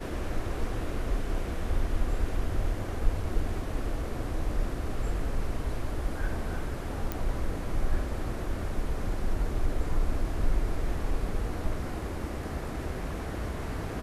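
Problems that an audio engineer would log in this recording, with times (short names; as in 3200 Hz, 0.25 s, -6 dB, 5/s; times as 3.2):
7.12 pop -17 dBFS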